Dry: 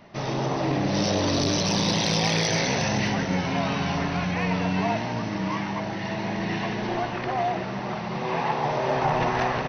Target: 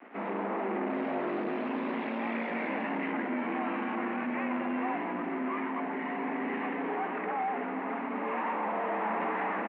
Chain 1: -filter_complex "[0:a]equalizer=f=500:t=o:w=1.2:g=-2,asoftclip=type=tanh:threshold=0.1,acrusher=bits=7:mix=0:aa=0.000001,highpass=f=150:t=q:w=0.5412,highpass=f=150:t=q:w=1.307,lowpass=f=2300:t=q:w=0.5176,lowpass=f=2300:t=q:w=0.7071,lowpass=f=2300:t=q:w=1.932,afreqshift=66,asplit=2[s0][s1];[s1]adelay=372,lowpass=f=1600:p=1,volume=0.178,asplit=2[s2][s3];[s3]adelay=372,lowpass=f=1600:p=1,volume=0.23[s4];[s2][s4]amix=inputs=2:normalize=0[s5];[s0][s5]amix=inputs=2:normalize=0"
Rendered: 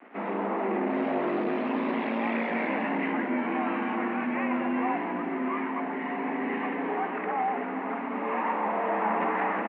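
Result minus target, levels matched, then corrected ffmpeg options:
saturation: distortion -9 dB
-filter_complex "[0:a]equalizer=f=500:t=o:w=1.2:g=-2,asoftclip=type=tanh:threshold=0.0376,acrusher=bits=7:mix=0:aa=0.000001,highpass=f=150:t=q:w=0.5412,highpass=f=150:t=q:w=1.307,lowpass=f=2300:t=q:w=0.5176,lowpass=f=2300:t=q:w=0.7071,lowpass=f=2300:t=q:w=1.932,afreqshift=66,asplit=2[s0][s1];[s1]adelay=372,lowpass=f=1600:p=1,volume=0.178,asplit=2[s2][s3];[s3]adelay=372,lowpass=f=1600:p=1,volume=0.23[s4];[s2][s4]amix=inputs=2:normalize=0[s5];[s0][s5]amix=inputs=2:normalize=0"

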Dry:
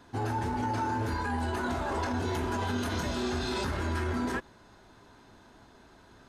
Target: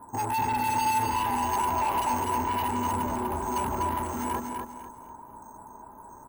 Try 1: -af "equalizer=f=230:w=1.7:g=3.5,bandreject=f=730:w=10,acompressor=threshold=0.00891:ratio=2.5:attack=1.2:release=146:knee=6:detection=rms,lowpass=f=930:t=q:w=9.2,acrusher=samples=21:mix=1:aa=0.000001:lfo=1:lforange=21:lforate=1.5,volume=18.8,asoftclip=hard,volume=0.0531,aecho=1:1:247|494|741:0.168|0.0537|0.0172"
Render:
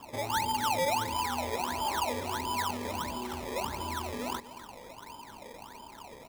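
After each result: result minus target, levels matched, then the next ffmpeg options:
decimation with a swept rate: distortion +22 dB; echo-to-direct -11 dB; compression: peak gain reduction +6.5 dB
-af "equalizer=f=230:w=1.7:g=3.5,bandreject=f=730:w=10,acompressor=threshold=0.00891:ratio=2.5:attack=1.2:release=146:knee=6:detection=rms,lowpass=f=930:t=q:w=9.2,acrusher=samples=4:mix=1:aa=0.000001:lfo=1:lforange=4:lforate=1.5,volume=18.8,asoftclip=hard,volume=0.0531,aecho=1:1:247|494|741:0.168|0.0537|0.0172"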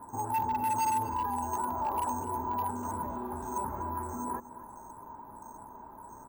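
echo-to-direct -11 dB; compression: peak gain reduction +6.5 dB
-af "equalizer=f=230:w=1.7:g=3.5,bandreject=f=730:w=10,acompressor=threshold=0.00891:ratio=2.5:attack=1.2:release=146:knee=6:detection=rms,lowpass=f=930:t=q:w=9.2,acrusher=samples=4:mix=1:aa=0.000001:lfo=1:lforange=4:lforate=1.5,volume=18.8,asoftclip=hard,volume=0.0531,aecho=1:1:247|494|741|988:0.596|0.191|0.061|0.0195"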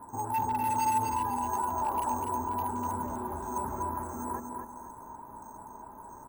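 compression: peak gain reduction +6.5 dB
-af "equalizer=f=230:w=1.7:g=3.5,bandreject=f=730:w=10,acompressor=threshold=0.0316:ratio=2.5:attack=1.2:release=146:knee=6:detection=rms,lowpass=f=930:t=q:w=9.2,acrusher=samples=4:mix=1:aa=0.000001:lfo=1:lforange=4:lforate=1.5,volume=18.8,asoftclip=hard,volume=0.0531,aecho=1:1:247|494|741|988:0.596|0.191|0.061|0.0195"

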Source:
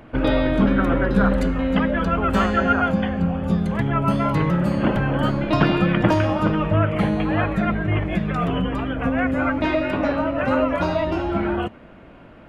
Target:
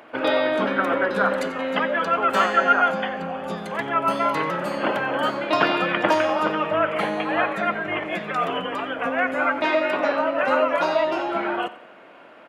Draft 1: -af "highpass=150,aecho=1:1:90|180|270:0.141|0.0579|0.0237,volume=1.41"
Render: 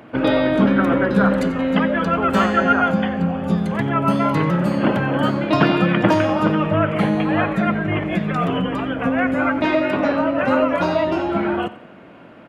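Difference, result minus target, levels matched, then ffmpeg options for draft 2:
125 Hz band +13.5 dB
-af "highpass=500,aecho=1:1:90|180|270:0.141|0.0579|0.0237,volume=1.41"

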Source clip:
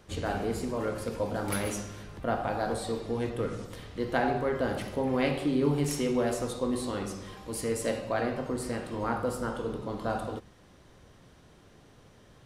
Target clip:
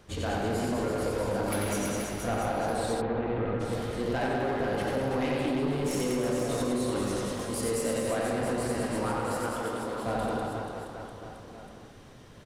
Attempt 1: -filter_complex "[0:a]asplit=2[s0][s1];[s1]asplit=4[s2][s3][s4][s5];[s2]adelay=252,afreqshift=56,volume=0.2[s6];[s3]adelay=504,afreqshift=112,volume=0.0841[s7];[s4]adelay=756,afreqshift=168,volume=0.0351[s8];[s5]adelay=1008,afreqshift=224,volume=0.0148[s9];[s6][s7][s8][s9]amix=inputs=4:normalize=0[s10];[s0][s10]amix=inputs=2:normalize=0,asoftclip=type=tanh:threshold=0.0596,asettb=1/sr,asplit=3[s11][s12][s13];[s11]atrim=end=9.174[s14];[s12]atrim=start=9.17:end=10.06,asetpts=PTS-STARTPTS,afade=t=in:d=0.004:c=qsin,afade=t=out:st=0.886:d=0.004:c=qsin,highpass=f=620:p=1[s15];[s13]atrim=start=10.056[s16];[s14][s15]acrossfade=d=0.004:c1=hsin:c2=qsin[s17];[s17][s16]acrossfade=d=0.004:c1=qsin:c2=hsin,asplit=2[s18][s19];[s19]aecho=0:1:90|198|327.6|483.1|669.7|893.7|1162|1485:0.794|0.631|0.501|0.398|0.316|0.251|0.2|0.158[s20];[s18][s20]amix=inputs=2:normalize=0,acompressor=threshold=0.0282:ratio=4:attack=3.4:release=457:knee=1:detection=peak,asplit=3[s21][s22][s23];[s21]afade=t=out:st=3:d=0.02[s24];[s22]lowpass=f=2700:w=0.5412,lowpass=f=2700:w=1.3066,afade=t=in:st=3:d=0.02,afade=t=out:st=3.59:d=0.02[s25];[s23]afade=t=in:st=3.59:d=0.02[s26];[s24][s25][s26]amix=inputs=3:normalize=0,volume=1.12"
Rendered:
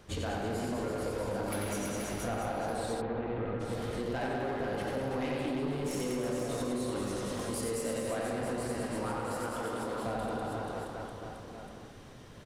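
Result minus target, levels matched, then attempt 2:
compression: peak gain reduction +5 dB
-filter_complex "[0:a]asplit=2[s0][s1];[s1]asplit=4[s2][s3][s4][s5];[s2]adelay=252,afreqshift=56,volume=0.2[s6];[s3]adelay=504,afreqshift=112,volume=0.0841[s7];[s4]adelay=756,afreqshift=168,volume=0.0351[s8];[s5]adelay=1008,afreqshift=224,volume=0.0148[s9];[s6][s7][s8][s9]amix=inputs=4:normalize=0[s10];[s0][s10]amix=inputs=2:normalize=0,asoftclip=type=tanh:threshold=0.0596,asettb=1/sr,asplit=3[s11][s12][s13];[s11]atrim=end=9.174[s14];[s12]atrim=start=9.17:end=10.06,asetpts=PTS-STARTPTS,afade=t=in:d=0.004:c=qsin,afade=t=out:st=0.886:d=0.004:c=qsin,highpass=f=620:p=1[s15];[s13]atrim=start=10.056[s16];[s14][s15]acrossfade=d=0.004:c1=hsin:c2=qsin[s17];[s17][s16]acrossfade=d=0.004:c1=qsin:c2=hsin,asplit=2[s18][s19];[s19]aecho=0:1:90|198|327.6|483.1|669.7|893.7|1162|1485:0.794|0.631|0.501|0.398|0.316|0.251|0.2|0.158[s20];[s18][s20]amix=inputs=2:normalize=0,acompressor=threshold=0.0596:ratio=4:attack=3.4:release=457:knee=1:detection=peak,asplit=3[s21][s22][s23];[s21]afade=t=out:st=3:d=0.02[s24];[s22]lowpass=f=2700:w=0.5412,lowpass=f=2700:w=1.3066,afade=t=in:st=3:d=0.02,afade=t=out:st=3.59:d=0.02[s25];[s23]afade=t=in:st=3.59:d=0.02[s26];[s24][s25][s26]amix=inputs=3:normalize=0,volume=1.12"

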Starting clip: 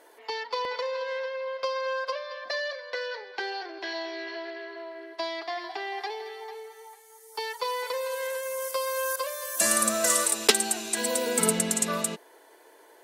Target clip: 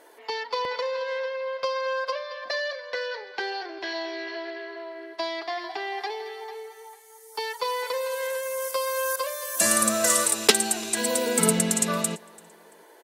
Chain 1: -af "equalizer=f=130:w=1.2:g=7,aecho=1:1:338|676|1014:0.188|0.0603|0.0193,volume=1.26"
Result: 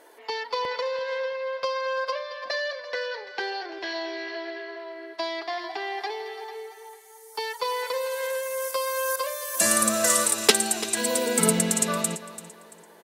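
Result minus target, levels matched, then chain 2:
echo-to-direct +10 dB
-af "equalizer=f=130:w=1.2:g=7,aecho=1:1:338|676:0.0596|0.0191,volume=1.26"

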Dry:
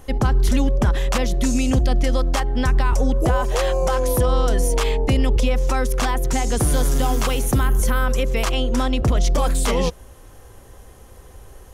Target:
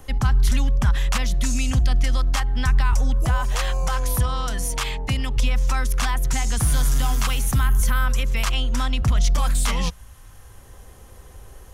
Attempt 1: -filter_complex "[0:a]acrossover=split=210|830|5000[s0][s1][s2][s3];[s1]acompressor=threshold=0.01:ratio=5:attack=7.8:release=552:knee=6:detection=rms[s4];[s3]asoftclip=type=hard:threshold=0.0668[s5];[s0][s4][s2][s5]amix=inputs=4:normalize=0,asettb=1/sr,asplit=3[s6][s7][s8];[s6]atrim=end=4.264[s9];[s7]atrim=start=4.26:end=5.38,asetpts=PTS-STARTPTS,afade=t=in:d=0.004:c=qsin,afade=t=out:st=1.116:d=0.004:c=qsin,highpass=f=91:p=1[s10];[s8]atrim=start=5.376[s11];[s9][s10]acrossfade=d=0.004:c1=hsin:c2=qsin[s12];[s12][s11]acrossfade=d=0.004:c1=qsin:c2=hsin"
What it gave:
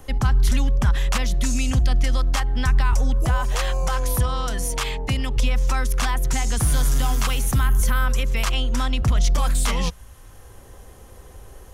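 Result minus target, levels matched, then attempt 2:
compression: peak gain reduction -9 dB
-filter_complex "[0:a]acrossover=split=210|830|5000[s0][s1][s2][s3];[s1]acompressor=threshold=0.00282:ratio=5:attack=7.8:release=552:knee=6:detection=rms[s4];[s3]asoftclip=type=hard:threshold=0.0668[s5];[s0][s4][s2][s5]amix=inputs=4:normalize=0,asettb=1/sr,asplit=3[s6][s7][s8];[s6]atrim=end=4.264[s9];[s7]atrim=start=4.26:end=5.38,asetpts=PTS-STARTPTS,afade=t=in:d=0.004:c=qsin,afade=t=out:st=1.116:d=0.004:c=qsin,highpass=f=91:p=1[s10];[s8]atrim=start=5.376[s11];[s9][s10]acrossfade=d=0.004:c1=hsin:c2=qsin[s12];[s12][s11]acrossfade=d=0.004:c1=qsin:c2=hsin"

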